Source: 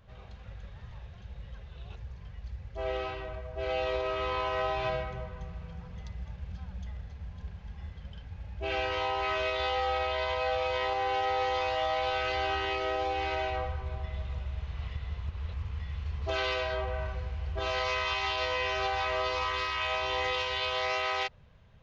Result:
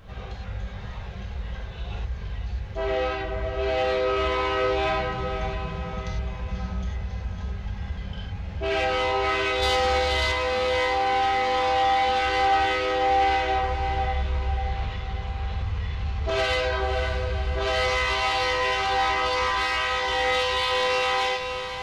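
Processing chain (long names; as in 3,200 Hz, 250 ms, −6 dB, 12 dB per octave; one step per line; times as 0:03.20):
reverb reduction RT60 0.6 s
convolution reverb, pre-delay 3 ms, DRR −3 dB
in parallel at +1.5 dB: downward compressor, threshold −39 dBFS, peak gain reduction 15.5 dB
0:09.62–0:10.32: on the sum: bass and treble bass +8 dB, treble +14 dB
soft clipping −21.5 dBFS, distortion −15 dB
on a send: feedback delay with all-pass diffusion 542 ms, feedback 48%, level −8 dB
on the sum: level +3.5 dB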